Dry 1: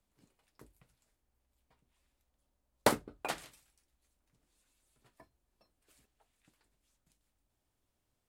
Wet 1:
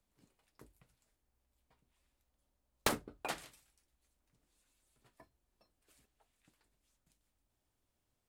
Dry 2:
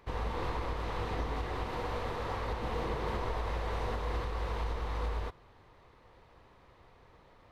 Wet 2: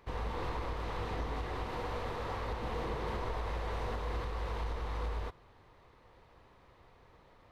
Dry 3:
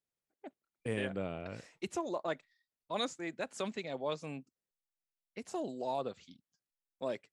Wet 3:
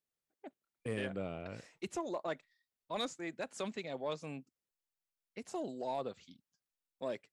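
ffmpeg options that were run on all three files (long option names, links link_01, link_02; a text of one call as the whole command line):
ffmpeg -i in.wav -af "aeval=exprs='0.282*(cos(1*acos(clip(val(0)/0.282,-1,1)))-cos(1*PI/2))+0.126*(cos(3*acos(clip(val(0)/0.282,-1,1)))-cos(3*PI/2))':channel_layout=same,asoftclip=type=tanh:threshold=-25.5dB,volume=8dB" out.wav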